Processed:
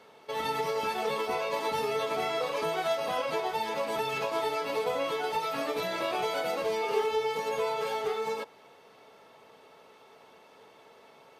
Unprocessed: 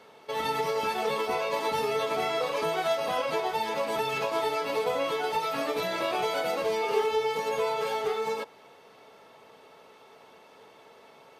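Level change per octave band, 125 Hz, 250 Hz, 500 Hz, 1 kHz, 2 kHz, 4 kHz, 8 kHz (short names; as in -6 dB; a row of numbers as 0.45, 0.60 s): -2.0, -2.0, -2.0, -2.0, -2.0, -2.0, -2.0 dB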